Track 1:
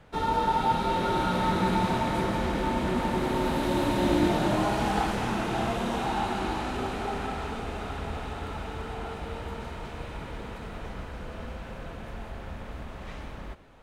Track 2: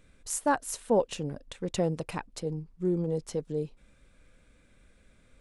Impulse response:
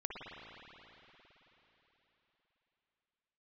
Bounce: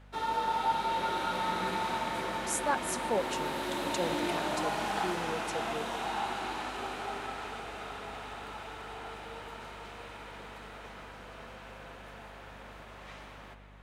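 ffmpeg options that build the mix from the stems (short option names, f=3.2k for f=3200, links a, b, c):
-filter_complex "[0:a]volume=-5dB,asplit=2[a][b];[b]volume=-5.5dB[c];[1:a]adelay=2200,volume=-1dB[d];[2:a]atrim=start_sample=2205[e];[c][e]afir=irnorm=-1:irlink=0[f];[a][d][f]amix=inputs=3:normalize=0,highpass=f=780:p=1,aeval=exprs='val(0)+0.00224*(sin(2*PI*50*n/s)+sin(2*PI*2*50*n/s)/2+sin(2*PI*3*50*n/s)/3+sin(2*PI*4*50*n/s)/4+sin(2*PI*5*50*n/s)/5)':c=same"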